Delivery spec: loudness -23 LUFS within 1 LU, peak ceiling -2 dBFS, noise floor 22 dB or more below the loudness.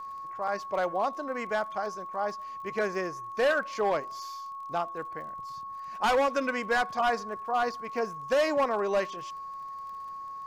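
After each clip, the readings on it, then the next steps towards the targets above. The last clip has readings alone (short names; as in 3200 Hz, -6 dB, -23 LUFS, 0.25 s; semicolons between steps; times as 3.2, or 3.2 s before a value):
ticks 38/s; steady tone 1100 Hz; tone level -37 dBFS; loudness -30.5 LUFS; peak -19.0 dBFS; loudness target -23.0 LUFS
-> de-click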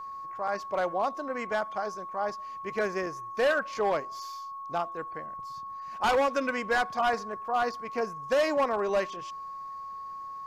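ticks 0.096/s; steady tone 1100 Hz; tone level -37 dBFS
-> notch 1100 Hz, Q 30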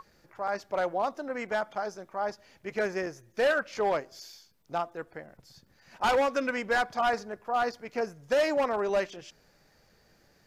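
steady tone none; loudness -30.0 LUFS; peak -14.0 dBFS; loudness target -23.0 LUFS
-> gain +7 dB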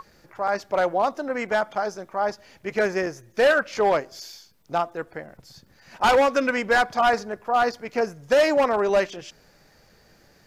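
loudness -23.0 LUFS; peak -7.0 dBFS; noise floor -57 dBFS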